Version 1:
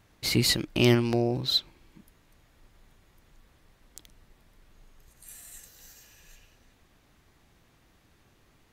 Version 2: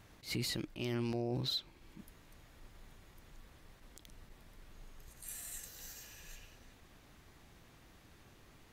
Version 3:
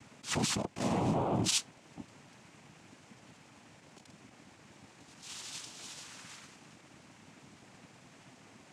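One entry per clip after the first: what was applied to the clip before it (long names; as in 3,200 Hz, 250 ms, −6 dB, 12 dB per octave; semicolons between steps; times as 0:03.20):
downward compressor 1.5 to 1, threshold −45 dBFS, peak gain reduction 10.5 dB; brickwall limiter −30.5 dBFS, peak gain reduction 11.5 dB; level that may rise only so fast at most 220 dB per second; level +2 dB
cochlear-implant simulation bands 4; level +6 dB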